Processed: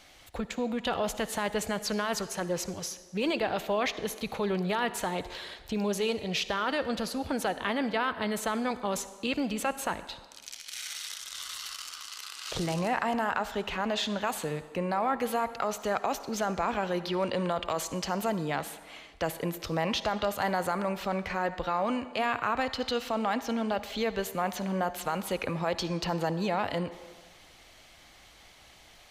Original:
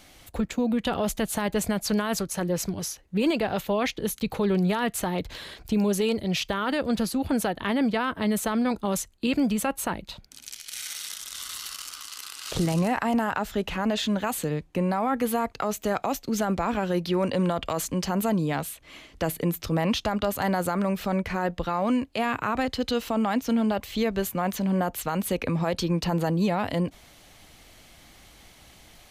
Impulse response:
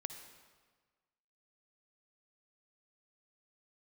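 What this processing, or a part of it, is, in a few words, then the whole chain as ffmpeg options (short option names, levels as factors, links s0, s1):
filtered reverb send: -filter_complex "[0:a]asplit=2[s0][s1];[s1]highpass=380,lowpass=8000[s2];[1:a]atrim=start_sample=2205[s3];[s2][s3]afir=irnorm=-1:irlink=0,volume=1.33[s4];[s0][s4]amix=inputs=2:normalize=0,volume=0.447"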